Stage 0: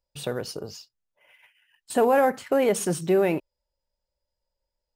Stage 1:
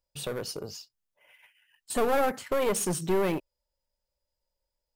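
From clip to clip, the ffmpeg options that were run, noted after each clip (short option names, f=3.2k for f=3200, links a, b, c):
-af "aeval=exprs='clip(val(0),-1,0.0473)':c=same,highshelf=f=6.2k:g=4.5,volume=-2dB"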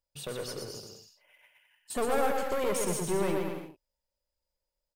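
-af "aecho=1:1:120|210|277.5|328.1|366.1:0.631|0.398|0.251|0.158|0.1,volume=-4.5dB"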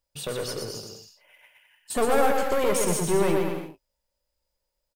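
-filter_complex "[0:a]asplit=2[a][b];[b]adelay=18,volume=-13dB[c];[a][c]amix=inputs=2:normalize=0,volume=6dB"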